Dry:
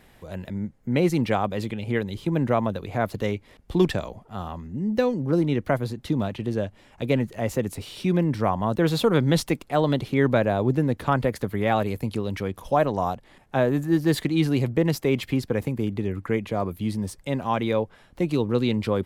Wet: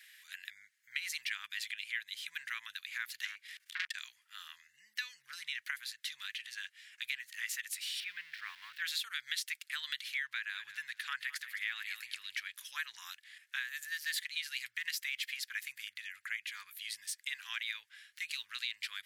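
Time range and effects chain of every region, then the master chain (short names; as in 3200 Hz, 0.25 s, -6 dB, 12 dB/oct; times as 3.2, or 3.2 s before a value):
3.25–3.94 de-hum 383.3 Hz, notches 4 + upward compressor, threshold -36 dBFS + core saturation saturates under 1700 Hz
8–8.82 switching spikes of -25.5 dBFS + air absorption 380 m
10.24–12.54 high shelf 7200 Hz -6 dB + feedback echo 0.212 s, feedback 23%, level -15 dB
whole clip: elliptic high-pass 1700 Hz, stop band 60 dB; compressor 6:1, threshold -37 dBFS; gain +3 dB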